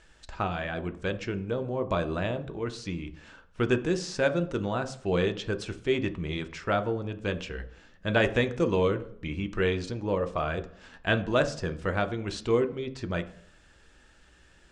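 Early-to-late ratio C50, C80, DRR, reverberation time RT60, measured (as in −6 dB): 15.0 dB, 18.5 dB, 8.0 dB, 0.60 s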